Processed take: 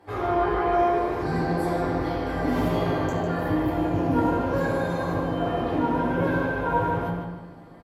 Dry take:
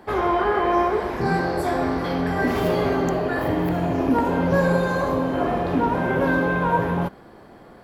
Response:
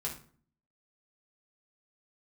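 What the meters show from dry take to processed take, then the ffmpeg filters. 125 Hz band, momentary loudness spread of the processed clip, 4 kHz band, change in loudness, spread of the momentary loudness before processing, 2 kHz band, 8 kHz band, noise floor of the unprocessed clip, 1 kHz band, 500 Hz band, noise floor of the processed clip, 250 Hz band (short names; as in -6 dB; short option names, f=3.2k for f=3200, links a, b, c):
-2.0 dB, 4 LU, -4.0 dB, -3.0 dB, 4 LU, -5.5 dB, n/a, -46 dBFS, -3.0 dB, -3.5 dB, -43 dBFS, -2.5 dB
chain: -filter_complex "[0:a]asplit=2[a][b];[b]adelay=152,lowpass=f=3.8k:p=1,volume=-4dB,asplit=2[c][d];[d]adelay=152,lowpass=f=3.8k:p=1,volume=0.42,asplit=2[e][f];[f]adelay=152,lowpass=f=3.8k:p=1,volume=0.42,asplit=2[g][h];[h]adelay=152,lowpass=f=3.8k:p=1,volume=0.42,asplit=2[i][j];[j]adelay=152,lowpass=f=3.8k:p=1,volume=0.42[k];[a][c][e][g][i][k]amix=inputs=6:normalize=0[l];[1:a]atrim=start_sample=2205,atrim=end_sample=6174,asetrate=29988,aresample=44100[m];[l][m]afir=irnorm=-1:irlink=0,volume=-9dB"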